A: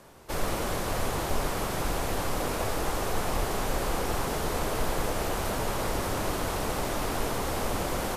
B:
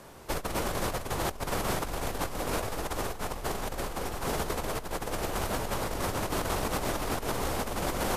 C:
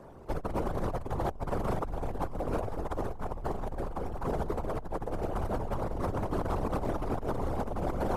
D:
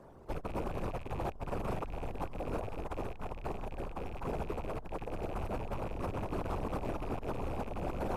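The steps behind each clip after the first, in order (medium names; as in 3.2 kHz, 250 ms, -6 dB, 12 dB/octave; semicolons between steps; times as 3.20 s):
compressor with a negative ratio -31 dBFS, ratio -0.5
resonances exaggerated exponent 2
rattle on loud lows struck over -42 dBFS, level -37 dBFS; trim -5 dB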